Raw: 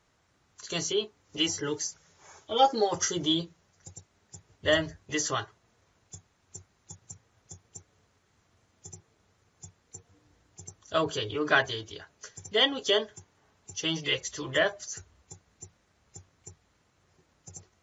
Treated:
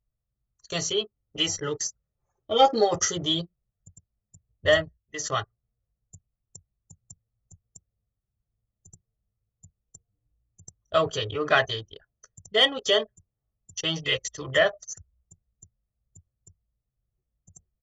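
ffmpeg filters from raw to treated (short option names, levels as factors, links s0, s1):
-filter_complex "[0:a]asettb=1/sr,asplit=3[s0][s1][s2];[s0]atrim=end=2.384[s3];[s1]atrim=start=2.38:end=3.08,asetpts=PTS-STARTPTS,afade=t=in:d=0.004:c=qsin,afade=t=out:st=0.696:d=0.004:c=qsin,equalizer=f=300:w=1.4:g=6.5[s4];[s2]atrim=start=3.076[s5];[s3][s4]acrossfade=d=0.004:c1=hsin:c2=qsin[s6];[s6][s5]acrossfade=d=0.004:c1=qsin:c2=hsin,asplit=3[s7][s8][s9];[s7]atrim=end=4.95,asetpts=PTS-STARTPTS,afade=t=out:st=4.71:d=0.24:silence=0.334965[s10];[s8]atrim=start=4.95:end=5.14,asetpts=PTS-STARTPTS,volume=0.335[s11];[s9]atrim=start=5.14,asetpts=PTS-STARTPTS,afade=t=in:d=0.24:silence=0.334965[s12];[s10][s11][s12]concat=n=3:v=0:a=1,anlmdn=1.58,aecho=1:1:1.6:0.46,acontrast=58,volume=0.668"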